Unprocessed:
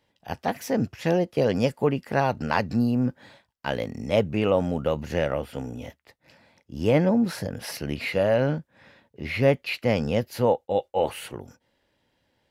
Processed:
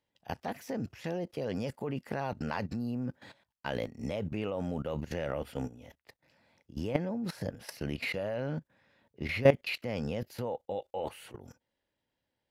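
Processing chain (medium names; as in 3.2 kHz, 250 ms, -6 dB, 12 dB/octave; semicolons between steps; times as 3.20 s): level held to a coarse grid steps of 17 dB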